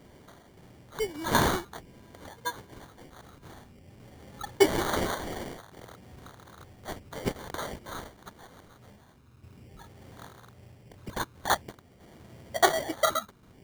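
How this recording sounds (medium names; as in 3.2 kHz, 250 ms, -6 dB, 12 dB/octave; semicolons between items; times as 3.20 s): random-step tremolo; phasing stages 12, 0.51 Hz, lowest notch 670–4600 Hz; aliases and images of a low sample rate 2.6 kHz, jitter 0%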